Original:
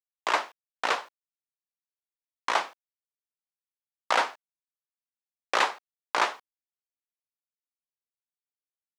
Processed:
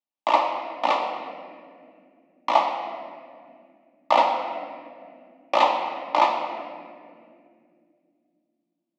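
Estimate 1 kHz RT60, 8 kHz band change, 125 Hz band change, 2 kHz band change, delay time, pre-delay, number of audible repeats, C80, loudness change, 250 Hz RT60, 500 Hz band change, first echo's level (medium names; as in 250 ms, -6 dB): 1.8 s, no reading, no reading, -2.0 dB, no echo, 3 ms, no echo, 5.5 dB, +4.5 dB, 4.1 s, +9.5 dB, no echo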